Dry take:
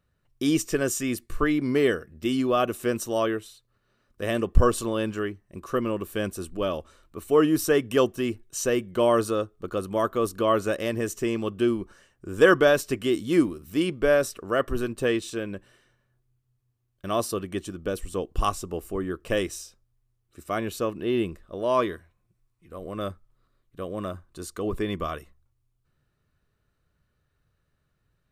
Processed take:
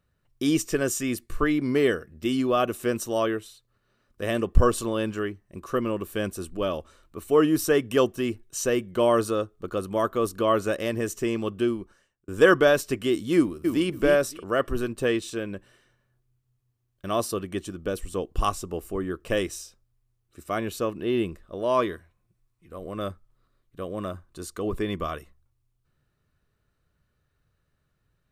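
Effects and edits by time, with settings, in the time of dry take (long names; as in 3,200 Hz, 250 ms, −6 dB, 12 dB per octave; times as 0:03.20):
0:11.54–0:12.28: fade out
0:13.36–0:13.87: delay throw 280 ms, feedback 15%, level −5.5 dB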